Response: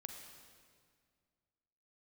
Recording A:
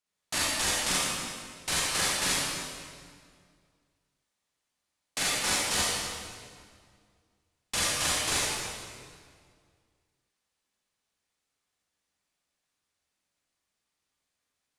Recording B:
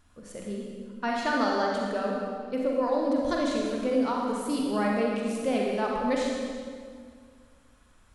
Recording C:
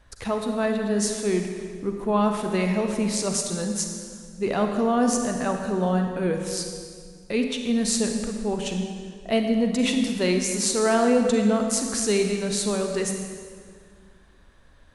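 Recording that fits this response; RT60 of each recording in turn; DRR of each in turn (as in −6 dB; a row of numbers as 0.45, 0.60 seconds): C; 2.0, 2.0, 2.0 seconds; −8.0, −2.5, 3.5 decibels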